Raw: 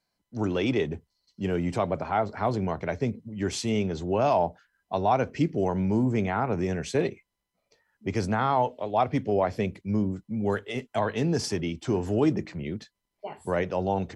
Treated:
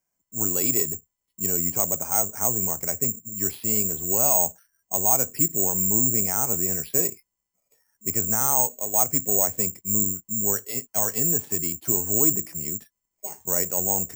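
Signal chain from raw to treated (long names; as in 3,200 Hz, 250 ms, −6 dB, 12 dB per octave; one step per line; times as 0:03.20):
low-pass filter 3,300 Hz
bad sample-rate conversion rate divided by 6×, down filtered, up zero stuff
level −5 dB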